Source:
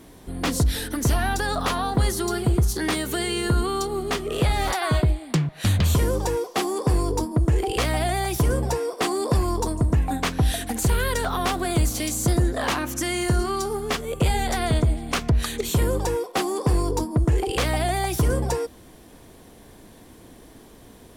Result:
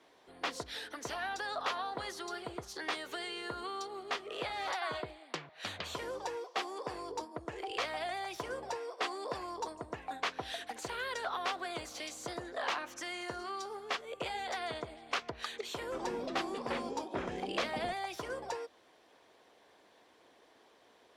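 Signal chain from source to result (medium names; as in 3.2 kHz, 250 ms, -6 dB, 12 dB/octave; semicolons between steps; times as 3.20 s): high-pass 74 Hz; three-band isolator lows -23 dB, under 420 Hz, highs -20 dB, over 5.6 kHz; 15.80–17.93 s: ever faster or slower copies 119 ms, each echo -6 st, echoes 2; harmonic-percussive split harmonic -4 dB; trim -7.5 dB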